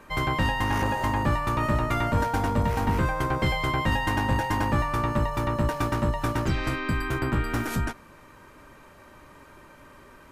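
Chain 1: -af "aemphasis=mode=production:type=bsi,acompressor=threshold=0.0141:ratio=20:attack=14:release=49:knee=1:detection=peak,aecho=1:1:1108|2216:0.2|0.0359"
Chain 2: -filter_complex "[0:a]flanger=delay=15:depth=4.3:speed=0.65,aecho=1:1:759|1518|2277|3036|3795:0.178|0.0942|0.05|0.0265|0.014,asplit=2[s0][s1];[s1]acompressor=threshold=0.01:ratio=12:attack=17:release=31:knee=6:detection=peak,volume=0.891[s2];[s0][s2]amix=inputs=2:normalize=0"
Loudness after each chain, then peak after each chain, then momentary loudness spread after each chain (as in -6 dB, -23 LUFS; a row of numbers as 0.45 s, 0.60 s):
-37.0 LUFS, -26.5 LUFS; -22.0 dBFS, -14.5 dBFS; 12 LU, 17 LU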